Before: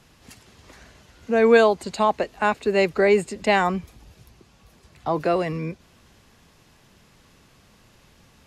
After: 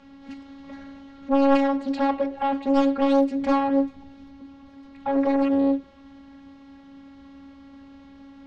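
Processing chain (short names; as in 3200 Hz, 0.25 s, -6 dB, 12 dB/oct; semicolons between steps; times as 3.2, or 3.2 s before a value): high shelf 4600 Hz -10.5 dB; in parallel at +1 dB: compressor, threshold -30 dBFS, peak gain reduction 18 dB; on the sum: robotiser 276 Hz; soft clip -18.5 dBFS, distortion -8 dB; air absorption 140 m; on a send at -6.5 dB: reverb RT60 0.55 s, pre-delay 3 ms; on the sum: Doppler distortion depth 0.75 ms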